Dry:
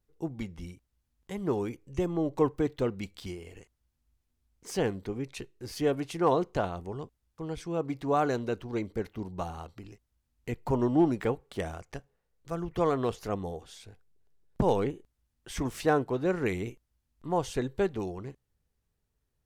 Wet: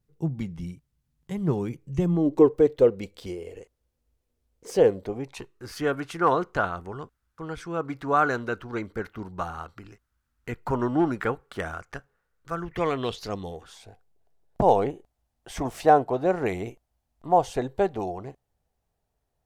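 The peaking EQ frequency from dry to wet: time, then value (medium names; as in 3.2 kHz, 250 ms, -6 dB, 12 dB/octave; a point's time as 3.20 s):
peaking EQ +14 dB 0.79 oct
2.05 s 150 Hz
2.54 s 490 Hz
4.92 s 490 Hz
5.68 s 1.4 kHz
12.57 s 1.4 kHz
13.34 s 5.2 kHz
13.83 s 710 Hz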